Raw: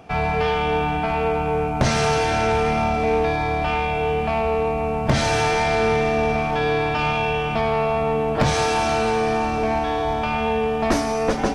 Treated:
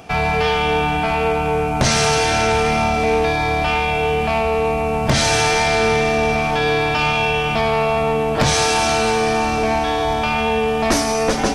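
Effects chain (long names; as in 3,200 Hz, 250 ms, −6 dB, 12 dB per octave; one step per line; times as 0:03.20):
high-shelf EQ 3,000 Hz +10 dB
in parallel at −2 dB: brickwall limiter −17 dBFS, peak gain reduction 11 dB
on the sum: level −1 dB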